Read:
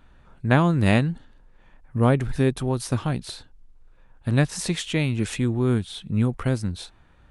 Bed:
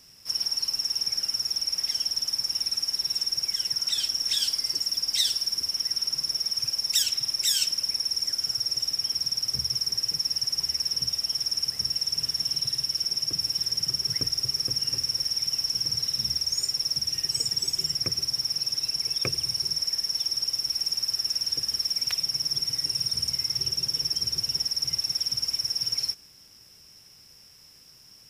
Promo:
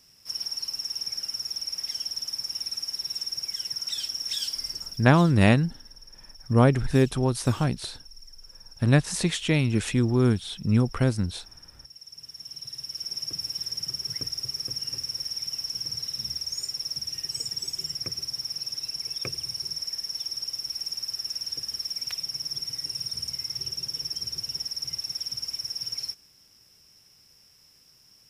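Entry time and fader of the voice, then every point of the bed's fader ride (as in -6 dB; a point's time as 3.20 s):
4.55 s, +0.5 dB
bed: 4.64 s -4.5 dB
5.35 s -22 dB
11.77 s -22 dB
13.18 s -5 dB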